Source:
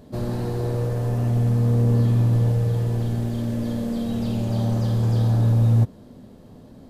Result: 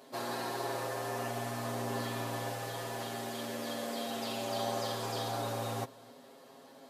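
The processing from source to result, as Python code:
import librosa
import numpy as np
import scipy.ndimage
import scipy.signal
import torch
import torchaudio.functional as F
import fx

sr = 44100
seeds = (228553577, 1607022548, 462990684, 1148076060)

p1 = scipy.signal.sosfilt(scipy.signal.butter(2, 670.0, 'highpass', fs=sr, output='sos'), x)
p2 = p1 + 0.94 * np.pad(p1, (int(7.4 * sr / 1000.0), 0))[:len(p1)]
y = p2 + fx.echo_single(p2, sr, ms=260, db=-24.0, dry=0)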